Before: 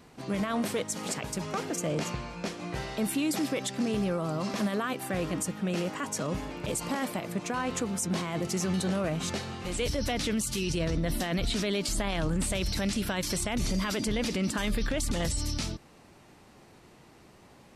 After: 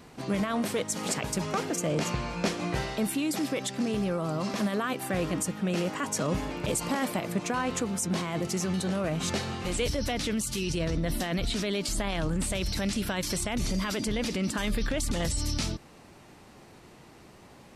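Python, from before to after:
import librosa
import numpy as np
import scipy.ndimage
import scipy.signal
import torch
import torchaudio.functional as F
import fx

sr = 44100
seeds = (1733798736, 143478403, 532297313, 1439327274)

y = fx.rider(x, sr, range_db=10, speed_s=0.5)
y = y * librosa.db_to_amplitude(1.0)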